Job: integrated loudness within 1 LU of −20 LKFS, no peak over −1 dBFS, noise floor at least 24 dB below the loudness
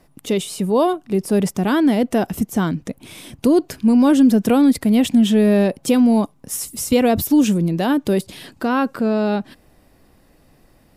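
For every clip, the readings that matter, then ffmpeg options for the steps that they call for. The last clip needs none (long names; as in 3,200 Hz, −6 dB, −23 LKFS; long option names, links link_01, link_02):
integrated loudness −17.5 LKFS; sample peak −5.0 dBFS; target loudness −20.0 LKFS
→ -af "volume=-2.5dB"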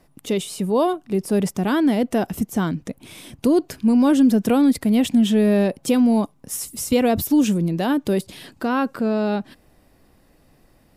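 integrated loudness −20.0 LKFS; sample peak −7.5 dBFS; background noise floor −57 dBFS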